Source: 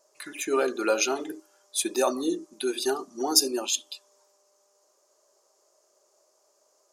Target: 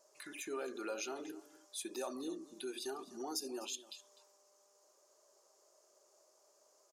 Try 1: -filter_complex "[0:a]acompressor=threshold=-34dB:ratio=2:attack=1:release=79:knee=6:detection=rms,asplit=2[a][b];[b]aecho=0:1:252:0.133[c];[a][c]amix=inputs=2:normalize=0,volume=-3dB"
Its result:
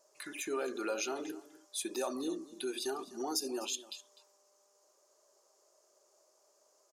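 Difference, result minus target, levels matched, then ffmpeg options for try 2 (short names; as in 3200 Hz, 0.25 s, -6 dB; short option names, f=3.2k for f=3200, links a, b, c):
compressor: peak gain reduction -5.5 dB
-filter_complex "[0:a]acompressor=threshold=-45dB:ratio=2:attack=1:release=79:knee=6:detection=rms,asplit=2[a][b];[b]aecho=0:1:252:0.133[c];[a][c]amix=inputs=2:normalize=0,volume=-3dB"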